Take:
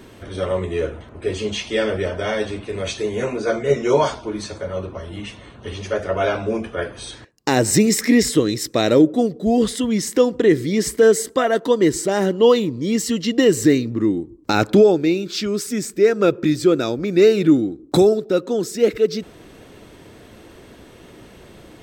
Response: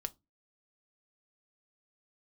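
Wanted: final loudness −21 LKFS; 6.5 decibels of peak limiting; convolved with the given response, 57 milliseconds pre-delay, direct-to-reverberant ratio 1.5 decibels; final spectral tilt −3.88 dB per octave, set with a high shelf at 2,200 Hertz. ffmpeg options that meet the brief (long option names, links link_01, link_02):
-filter_complex "[0:a]highshelf=frequency=2200:gain=6,alimiter=limit=-7.5dB:level=0:latency=1,asplit=2[link_01][link_02];[1:a]atrim=start_sample=2205,adelay=57[link_03];[link_02][link_03]afir=irnorm=-1:irlink=0,volume=0dB[link_04];[link_01][link_04]amix=inputs=2:normalize=0,volume=-4dB"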